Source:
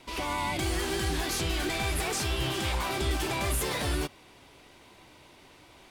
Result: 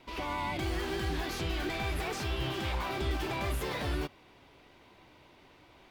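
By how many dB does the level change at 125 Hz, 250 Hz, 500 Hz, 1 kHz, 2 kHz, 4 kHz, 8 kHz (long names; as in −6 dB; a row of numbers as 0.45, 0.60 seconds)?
−3.0, −3.0, −3.0, −3.5, −4.0, −6.5, −13.0 decibels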